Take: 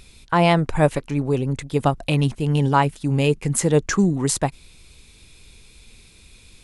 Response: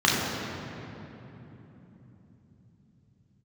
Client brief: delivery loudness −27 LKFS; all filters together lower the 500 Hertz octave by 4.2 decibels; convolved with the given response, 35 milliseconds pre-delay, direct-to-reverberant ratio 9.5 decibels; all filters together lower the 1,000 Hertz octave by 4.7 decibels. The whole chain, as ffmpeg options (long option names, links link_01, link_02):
-filter_complex "[0:a]equalizer=frequency=500:width_type=o:gain=-4,equalizer=frequency=1000:width_type=o:gain=-4.5,asplit=2[link_01][link_02];[1:a]atrim=start_sample=2205,adelay=35[link_03];[link_02][link_03]afir=irnorm=-1:irlink=0,volume=-28.5dB[link_04];[link_01][link_04]amix=inputs=2:normalize=0,volume=-6dB"